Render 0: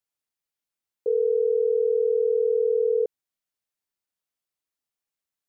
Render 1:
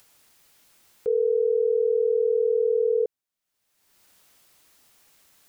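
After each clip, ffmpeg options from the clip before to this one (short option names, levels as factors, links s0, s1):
-af "acompressor=mode=upward:threshold=0.0158:ratio=2.5"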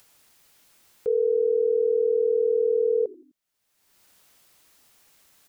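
-filter_complex "[0:a]asplit=4[s0][s1][s2][s3];[s1]adelay=85,afreqshift=-60,volume=0.0794[s4];[s2]adelay=170,afreqshift=-120,volume=0.0359[s5];[s3]adelay=255,afreqshift=-180,volume=0.016[s6];[s0][s4][s5][s6]amix=inputs=4:normalize=0"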